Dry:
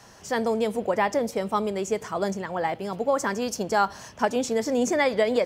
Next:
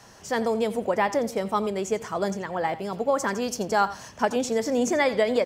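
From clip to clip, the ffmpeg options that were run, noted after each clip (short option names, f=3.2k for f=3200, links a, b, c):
-af "aecho=1:1:87:0.15"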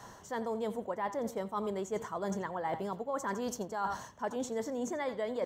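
-af "equalizer=f=1k:t=o:w=0.33:g=6,equalizer=f=2.5k:t=o:w=0.33:g=-11,equalizer=f=5k:t=o:w=0.33:g=-10,equalizer=f=10k:t=o:w=0.33:g=-7,areverse,acompressor=threshold=-32dB:ratio=10,areverse"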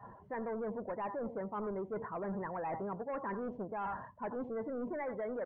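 -af "aresample=16000,asoftclip=type=tanh:threshold=-35dB,aresample=44100,lowpass=f=2.4k:w=0.5412,lowpass=f=2.4k:w=1.3066,afftdn=nr=19:nf=-50,volume=1dB"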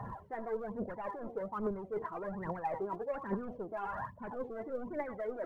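-af "areverse,acompressor=threshold=-47dB:ratio=6,areverse,aphaser=in_gain=1:out_gain=1:delay=3.2:decay=0.67:speed=1.2:type=triangular,volume=7.5dB"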